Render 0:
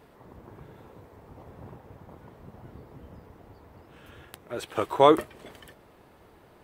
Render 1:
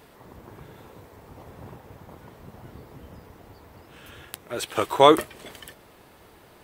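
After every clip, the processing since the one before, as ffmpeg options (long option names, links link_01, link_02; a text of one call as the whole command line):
ffmpeg -i in.wav -af "highshelf=frequency=2200:gain=9,volume=2dB" out.wav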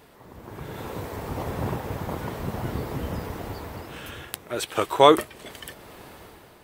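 ffmpeg -i in.wav -af "dynaudnorm=framelen=160:gausssize=9:maxgain=15.5dB,volume=-1dB" out.wav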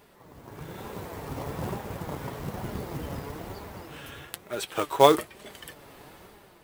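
ffmpeg -i in.wav -af "flanger=delay=4.9:depth=2.4:regen=59:speed=1.1:shape=sinusoidal,acrusher=bits=4:mode=log:mix=0:aa=0.000001" out.wav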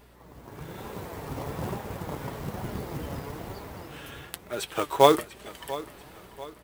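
ffmpeg -i in.wav -af "aeval=exprs='val(0)+0.00141*(sin(2*PI*60*n/s)+sin(2*PI*2*60*n/s)/2+sin(2*PI*3*60*n/s)/3+sin(2*PI*4*60*n/s)/4+sin(2*PI*5*60*n/s)/5)':channel_layout=same,aecho=1:1:690|1380|2070|2760:0.141|0.0622|0.0273|0.012" out.wav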